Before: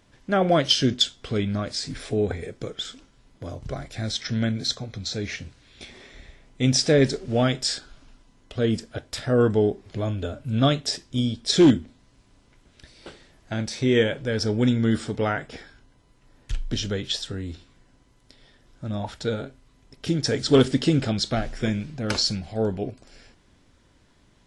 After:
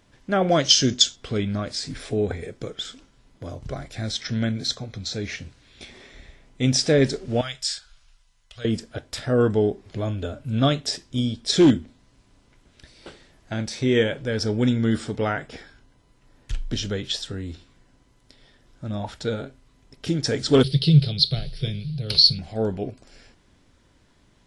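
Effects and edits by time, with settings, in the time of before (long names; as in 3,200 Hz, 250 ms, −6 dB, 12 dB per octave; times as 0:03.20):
0:00.50–0:01.16: low-pass with resonance 6,500 Hz, resonance Q 3.9
0:07.41–0:08.65: guitar amp tone stack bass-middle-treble 10-0-10
0:20.63–0:22.39: drawn EQ curve 110 Hz 0 dB, 150 Hz +13 dB, 250 Hz −21 dB, 410 Hz −3 dB, 830 Hz −16 dB, 1,700 Hz −14 dB, 4,400 Hz +12 dB, 7,100 Hz −23 dB, 10,000 Hz +4 dB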